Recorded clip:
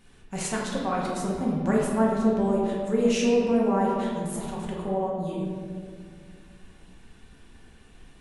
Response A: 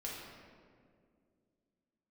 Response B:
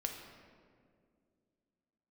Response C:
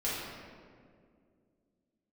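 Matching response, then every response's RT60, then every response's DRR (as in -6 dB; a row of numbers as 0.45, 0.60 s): A; 2.2, 2.2, 2.2 s; -5.0, 2.5, -9.0 dB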